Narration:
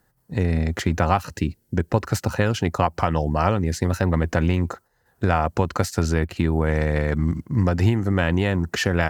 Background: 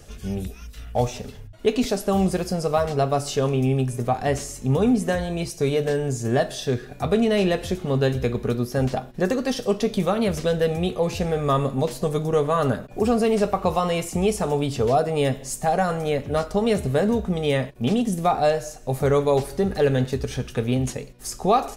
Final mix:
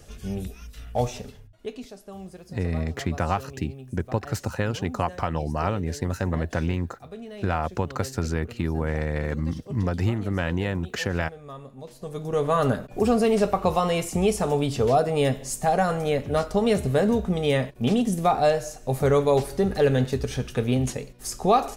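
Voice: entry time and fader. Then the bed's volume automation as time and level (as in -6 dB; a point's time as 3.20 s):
2.20 s, -5.5 dB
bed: 1.19 s -2.5 dB
1.93 s -19.5 dB
11.77 s -19.5 dB
12.50 s -0.5 dB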